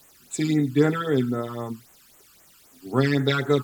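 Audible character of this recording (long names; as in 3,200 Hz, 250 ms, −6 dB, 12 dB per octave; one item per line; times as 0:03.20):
a quantiser's noise floor 8 bits, dither triangular
phaser sweep stages 12, 3.8 Hz, lowest notch 610–4,900 Hz
AAC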